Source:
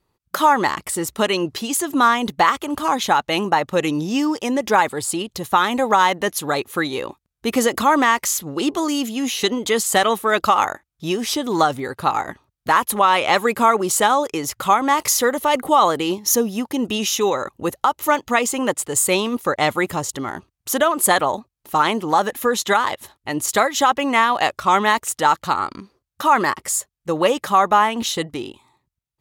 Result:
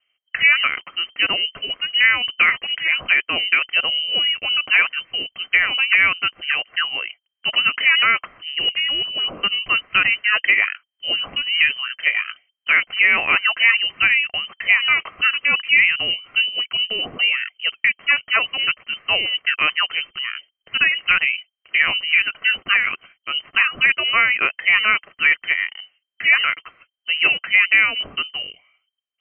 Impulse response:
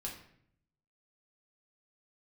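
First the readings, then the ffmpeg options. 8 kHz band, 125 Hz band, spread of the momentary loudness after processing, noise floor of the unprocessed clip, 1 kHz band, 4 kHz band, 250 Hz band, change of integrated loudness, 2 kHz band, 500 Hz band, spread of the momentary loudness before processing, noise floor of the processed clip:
under -40 dB, under -10 dB, 10 LU, -76 dBFS, -12.5 dB, +8.5 dB, -20.5 dB, +2.0 dB, +9.0 dB, -17.5 dB, 9 LU, -77 dBFS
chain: -af "bandreject=f=2300:w=16,lowpass=f=2700:t=q:w=0.5098,lowpass=f=2700:t=q:w=0.6013,lowpass=f=2700:t=q:w=0.9,lowpass=f=2700:t=q:w=2.563,afreqshift=-3200"

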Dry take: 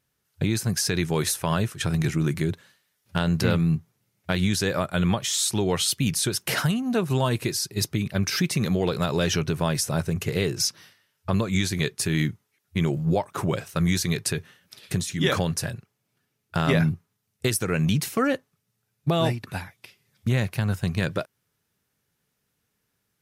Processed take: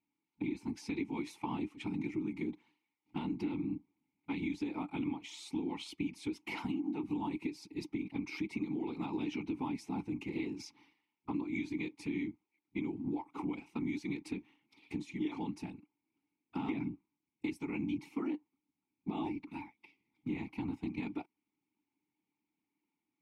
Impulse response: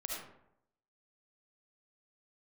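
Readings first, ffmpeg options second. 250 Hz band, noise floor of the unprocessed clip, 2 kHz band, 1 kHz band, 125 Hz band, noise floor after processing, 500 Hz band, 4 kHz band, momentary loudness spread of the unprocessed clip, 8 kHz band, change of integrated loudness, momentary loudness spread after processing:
-9.5 dB, -77 dBFS, -16.0 dB, -13.5 dB, -22.5 dB, under -85 dBFS, -18.0 dB, -23.0 dB, 8 LU, -30.0 dB, -14.5 dB, 8 LU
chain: -filter_complex "[0:a]afftfilt=real='hypot(re,im)*cos(2*PI*random(0))':imag='hypot(re,im)*sin(2*PI*random(1))':win_size=512:overlap=0.75,asplit=3[s0][s1][s2];[s0]bandpass=f=300:t=q:w=8,volume=1[s3];[s1]bandpass=f=870:t=q:w=8,volume=0.501[s4];[s2]bandpass=f=2240:t=q:w=8,volume=0.355[s5];[s3][s4][s5]amix=inputs=3:normalize=0,acompressor=threshold=0.00794:ratio=6,volume=2.82"

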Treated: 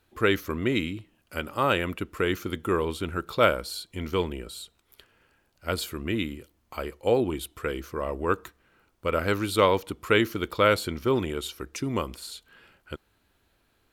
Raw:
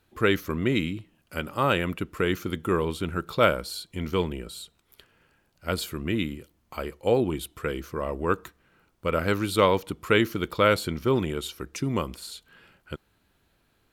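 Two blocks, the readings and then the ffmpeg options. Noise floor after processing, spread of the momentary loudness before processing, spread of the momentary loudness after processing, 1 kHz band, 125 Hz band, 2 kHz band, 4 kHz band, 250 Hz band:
-69 dBFS, 16 LU, 17 LU, 0.0 dB, -2.5 dB, 0.0 dB, 0.0 dB, -1.5 dB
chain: -af "equalizer=f=160:w=2:g=-6"

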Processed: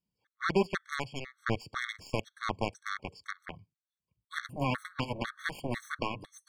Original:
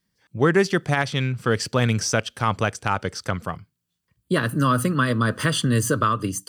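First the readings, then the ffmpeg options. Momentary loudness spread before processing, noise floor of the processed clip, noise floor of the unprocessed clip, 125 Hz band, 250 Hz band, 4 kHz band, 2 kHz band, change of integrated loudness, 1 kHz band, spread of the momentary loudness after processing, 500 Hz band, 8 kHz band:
8 LU, under -85 dBFS, -78 dBFS, -17.0 dB, -14.5 dB, -12.5 dB, -11.0 dB, -13.5 dB, -12.5 dB, 11 LU, -12.5 dB, -21.5 dB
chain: -af "aeval=exprs='0.531*(cos(1*acos(clip(val(0)/0.531,-1,1)))-cos(1*PI/2))+0.119*(cos(7*acos(clip(val(0)/0.531,-1,1)))-cos(7*PI/2))':c=same,lowpass=f=3600:p=1,afftfilt=real='re*gt(sin(2*PI*2*pts/sr)*(1-2*mod(floor(b*sr/1024/1100),2)),0)':imag='im*gt(sin(2*PI*2*pts/sr)*(1-2*mod(floor(b*sr/1024/1100),2)),0)':win_size=1024:overlap=0.75,volume=0.447"

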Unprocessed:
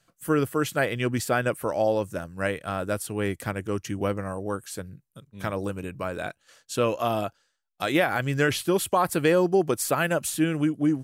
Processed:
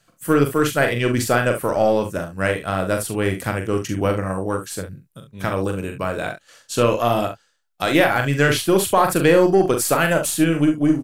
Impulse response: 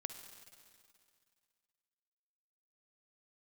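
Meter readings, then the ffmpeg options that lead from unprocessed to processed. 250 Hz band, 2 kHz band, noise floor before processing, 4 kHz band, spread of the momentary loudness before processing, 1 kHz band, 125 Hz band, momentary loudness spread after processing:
+6.5 dB, +7.0 dB, -73 dBFS, +7.0 dB, 10 LU, +6.5 dB, +7.0 dB, 10 LU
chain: -filter_complex "[0:a]asplit=2[s0][s1];[s1]aecho=0:1:42|69:0.501|0.251[s2];[s0][s2]amix=inputs=2:normalize=0,aeval=exprs='0.355*(cos(1*acos(clip(val(0)/0.355,-1,1)))-cos(1*PI/2))+0.0112*(cos(6*acos(clip(val(0)/0.355,-1,1)))-cos(6*PI/2))':c=same,volume=1.88"

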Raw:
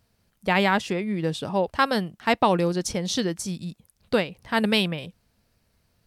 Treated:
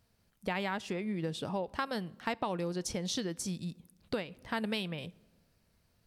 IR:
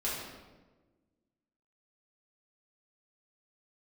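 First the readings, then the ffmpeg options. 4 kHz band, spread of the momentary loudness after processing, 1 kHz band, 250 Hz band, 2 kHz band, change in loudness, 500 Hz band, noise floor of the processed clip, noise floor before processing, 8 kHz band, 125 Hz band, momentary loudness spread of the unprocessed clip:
-11.5 dB, 6 LU, -13.5 dB, -10.5 dB, -13.0 dB, -11.5 dB, -12.0 dB, -73 dBFS, -70 dBFS, -7.5 dB, -10.0 dB, 11 LU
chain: -filter_complex "[0:a]acompressor=threshold=0.0398:ratio=4,asplit=2[s0][s1];[1:a]atrim=start_sample=2205[s2];[s1][s2]afir=irnorm=-1:irlink=0,volume=0.0422[s3];[s0][s3]amix=inputs=2:normalize=0,volume=0.596"

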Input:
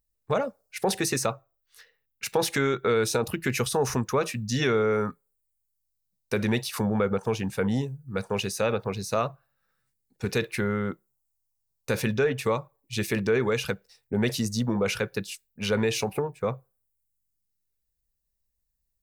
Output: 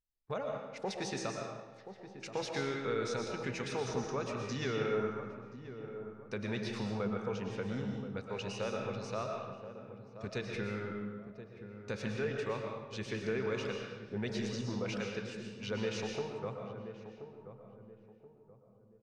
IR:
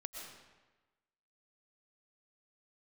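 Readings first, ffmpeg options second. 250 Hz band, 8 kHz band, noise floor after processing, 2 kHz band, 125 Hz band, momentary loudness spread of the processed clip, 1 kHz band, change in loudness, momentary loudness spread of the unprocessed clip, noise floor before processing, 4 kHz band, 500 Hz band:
-10.0 dB, -15.0 dB, -60 dBFS, -10.5 dB, -10.0 dB, 14 LU, -10.0 dB, -11.0 dB, 9 LU, -78 dBFS, -10.5 dB, -10.0 dB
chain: -filter_complex "[0:a]lowpass=f=6400:w=0.5412,lowpass=f=6400:w=1.3066,asplit=2[s0][s1];[s1]adelay=1028,lowpass=f=890:p=1,volume=0.316,asplit=2[s2][s3];[s3]adelay=1028,lowpass=f=890:p=1,volume=0.39,asplit=2[s4][s5];[s5]adelay=1028,lowpass=f=890:p=1,volume=0.39,asplit=2[s6][s7];[s7]adelay=1028,lowpass=f=890:p=1,volume=0.39[s8];[s0][s2][s4][s6][s8]amix=inputs=5:normalize=0[s9];[1:a]atrim=start_sample=2205[s10];[s9][s10]afir=irnorm=-1:irlink=0,volume=0.398"

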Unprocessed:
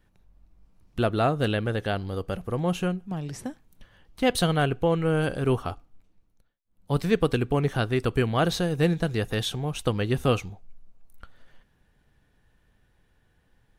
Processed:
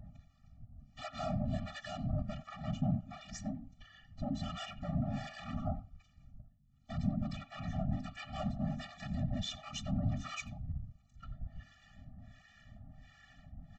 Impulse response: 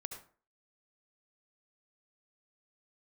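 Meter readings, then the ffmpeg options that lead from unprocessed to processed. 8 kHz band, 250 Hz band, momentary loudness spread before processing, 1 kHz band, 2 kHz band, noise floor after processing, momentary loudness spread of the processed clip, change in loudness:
-12.0 dB, -11.0 dB, 9 LU, -14.5 dB, -16.5 dB, -67 dBFS, 21 LU, -13.5 dB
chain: -filter_complex "[0:a]bandreject=f=50:t=h:w=6,bandreject=f=100:t=h:w=6,bandreject=f=150:t=h:w=6,bandreject=f=200:t=h:w=6,bandreject=f=250:t=h:w=6,bandreject=f=300:t=h:w=6,bandreject=f=350:t=h:w=6,bandreject=f=400:t=h:w=6,areverse,acompressor=mode=upward:threshold=0.00708:ratio=2.5,areverse,alimiter=limit=0.1:level=0:latency=1:release=78,aresample=16000,asoftclip=type=tanh:threshold=0.02,aresample=44100,acrossover=split=850[s0][s1];[s0]aeval=exprs='val(0)*(1-1/2+1/2*cos(2*PI*1.4*n/s))':c=same[s2];[s1]aeval=exprs='val(0)*(1-1/2-1/2*cos(2*PI*1.4*n/s))':c=same[s3];[s2][s3]amix=inputs=2:normalize=0,aeval=exprs='val(0)+0.000224*(sin(2*PI*50*n/s)+sin(2*PI*2*50*n/s)/2+sin(2*PI*3*50*n/s)/3+sin(2*PI*4*50*n/s)/4+sin(2*PI*5*50*n/s)/5)':c=same,asplit=2[s4][s5];[s5]adelay=90,highpass=300,lowpass=3400,asoftclip=type=hard:threshold=0.0126,volume=0.158[s6];[s4][s6]amix=inputs=2:normalize=0,afftfilt=real='hypot(re,im)*cos(2*PI*random(0))':imag='hypot(re,im)*sin(2*PI*random(1))':win_size=512:overlap=0.75,afftfilt=real='re*eq(mod(floor(b*sr/1024/280),2),0)':imag='im*eq(mod(floor(b*sr/1024/280),2),0)':win_size=1024:overlap=0.75,volume=3.98"

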